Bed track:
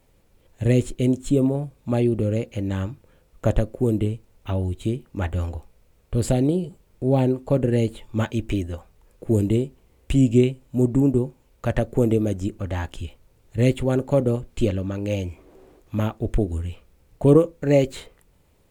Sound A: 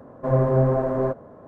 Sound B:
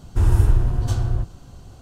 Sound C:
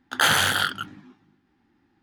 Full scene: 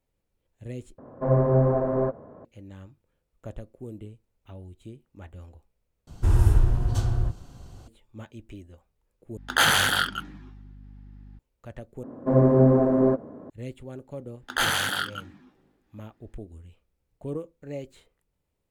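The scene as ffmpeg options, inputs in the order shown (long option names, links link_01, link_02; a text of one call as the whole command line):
ffmpeg -i bed.wav -i cue0.wav -i cue1.wav -i cue2.wav -filter_complex "[1:a]asplit=2[link_01][link_02];[3:a]asplit=2[link_03][link_04];[0:a]volume=-18.5dB[link_05];[link_01]lowpass=frequency=1600:poles=1[link_06];[link_03]aeval=exprs='val(0)+0.00631*(sin(2*PI*50*n/s)+sin(2*PI*2*50*n/s)/2+sin(2*PI*3*50*n/s)/3+sin(2*PI*4*50*n/s)/4+sin(2*PI*5*50*n/s)/5)':channel_layout=same[link_07];[link_02]equalizer=frequency=270:width_type=o:width=1.4:gain=12[link_08];[link_05]asplit=5[link_09][link_10][link_11][link_12][link_13];[link_09]atrim=end=0.984[link_14];[link_06]atrim=end=1.47,asetpts=PTS-STARTPTS,volume=-1dB[link_15];[link_10]atrim=start=2.446:end=6.074[link_16];[2:a]atrim=end=1.81,asetpts=PTS-STARTPTS,volume=-3dB[link_17];[link_11]atrim=start=7.876:end=9.374[link_18];[link_07]atrim=end=2.02,asetpts=PTS-STARTPTS,volume=-0.5dB[link_19];[link_12]atrim=start=11.386:end=12.034[link_20];[link_08]atrim=end=1.47,asetpts=PTS-STARTPTS,volume=-4dB[link_21];[link_13]atrim=start=13.496[link_22];[link_04]atrim=end=2.02,asetpts=PTS-STARTPTS,volume=-5dB,afade=type=in:duration=0.004:curve=hsin,afade=type=out:start_time=2.016:duration=0.004:curve=hsin,adelay=14370[link_23];[link_14][link_15]acrossfade=duration=0.004:curve1=hsin:curve2=hsin[link_24];[link_24][link_16]acrossfade=duration=0.004:curve1=hsin:curve2=hsin[link_25];[link_25][link_17]acrossfade=duration=0.004:curve1=hsin:curve2=hsin[link_26];[link_26][link_18]acrossfade=duration=0.004:curve1=hsin:curve2=hsin[link_27];[link_27][link_19]acrossfade=duration=0.004:curve1=hsin:curve2=hsin[link_28];[link_28][link_20]acrossfade=duration=0.004:curve1=hsin:curve2=hsin[link_29];[link_29][link_21]acrossfade=duration=0.004:curve1=hsin:curve2=hsin[link_30];[link_30][link_22]acrossfade=duration=0.004:curve1=hsin:curve2=hsin[link_31];[link_31][link_23]amix=inputs=2:normalize=0" out.wav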